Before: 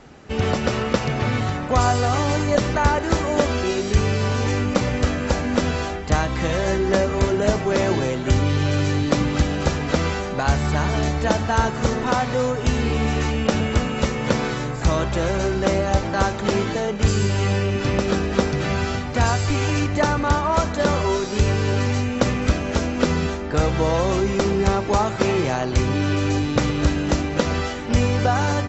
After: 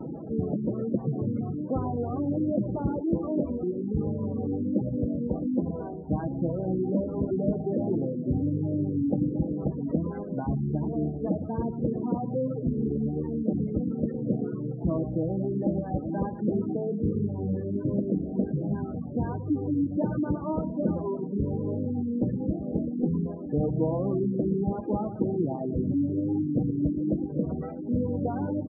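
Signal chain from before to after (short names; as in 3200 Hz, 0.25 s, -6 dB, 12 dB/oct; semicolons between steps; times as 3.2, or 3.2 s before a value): delta modulation 16 kbps, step -26 dBFS; band-pass 240 Hz, Q 1.5; reverb removal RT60 0.72 s; soft clip -17 dBFS, distortion -18 dB; comb 6.3 ms, depth 32%; reverse; upward compressor, threshold -32 dBFS; reverse; feedback echo 0.114 s, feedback 46%, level -12 dB; vibrato 1.3 Hz 60 cents; spectral gate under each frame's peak -20 dB strong; gain +1.5 dB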